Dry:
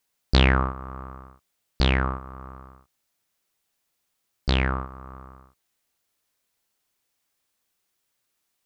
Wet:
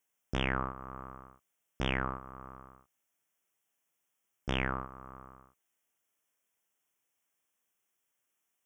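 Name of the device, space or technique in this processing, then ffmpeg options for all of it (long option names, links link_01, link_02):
PA system with an anti-feedback notch: -af "highpass=frequency=150:poles=1,asuperstop=centerf=4300:order=8:qfactor=2.2,alimiter=limit=-9.5dB:level=0:latency=1:release=467,volume=-5dB"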